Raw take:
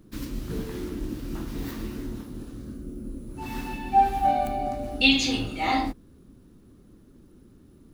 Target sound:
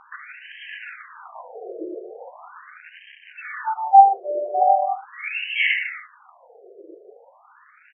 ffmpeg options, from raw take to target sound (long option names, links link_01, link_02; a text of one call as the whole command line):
ffmpeg -i in.wav -filter_complex "[0:a]lowshelf=frequency=270:width_type=q:width=1.5:gain=12,aecho=1:1:4.1:0.35,asplit=2[link_01][link_02];[link_02]acrusher=bits=5:mode=log:mix=0:aa=0.000001,volume=-6dB[link_03];[link_01][link_03]amix=inputs=2:normalize=0,equalizer=frequency=65:width_type=o:width=0.42:gain=14,acompressor=threshold=-21dB:ratio=2,asplit=2[link_04][link_05];[link_05]adelay=150,highpass=300,lowpass=3400,asoftclip=type=hard:threshold=-15.5dB,volume=-10dB[link_06];[link_04][link_06]amix=inputs=2:normalize=0,alimiter=level_in=17dB:limit=-1dB:release=50:level=0:latency=1,afftfilt=real='re*between(b*sr/1024,480*pow(2300/480,0.5+0.5*sin(2*PI*0.4*pts/sr))/1.41,480*pow(2300/480,0.5+0.5*sin(2*PI*0.4*pts/sr))*1.41)':imag='im*between(b*sr/1024,480*pow(2300/480,0.5+0.5*sin(2*PI*0.4*pts/sr))/1.41,480*pow(2300/480,0.5+0.5*sin(2*PI*0.4*pts/sr))*1.41)':win_size=1024:overlap=0.75,volume=2dB" out.wav